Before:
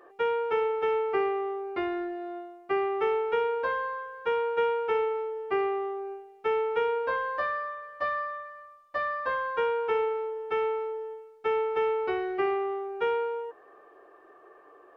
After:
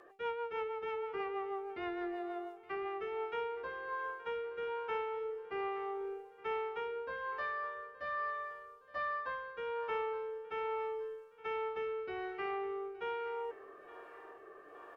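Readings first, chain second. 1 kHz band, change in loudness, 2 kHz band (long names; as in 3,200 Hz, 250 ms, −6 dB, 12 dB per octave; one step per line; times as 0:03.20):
−9.0 dB, −10.0 dB, −7.5 dB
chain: parametric band 400 Hz −6 dB 1.2 octaves
reversed playback
downward compressor 6 to 1, threshold −40 dBFS, peak gain reduction 14 dB
reversed playback
rotating-speaker cabinet horn 6.3 Hz, later 1.2 Hz, at 0:02.41
repeating echo 869 ms, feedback 52%, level −18.5 dB
level +5.5 dB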